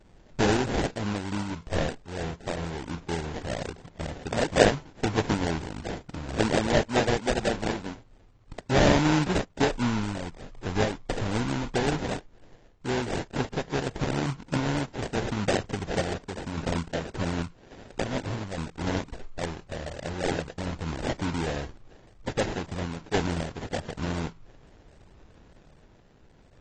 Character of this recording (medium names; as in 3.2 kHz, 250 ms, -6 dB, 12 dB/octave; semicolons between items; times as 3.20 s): random-step tremolo; aliases and images of a low sample rate 1.2 kHz, jitter 20%; AAC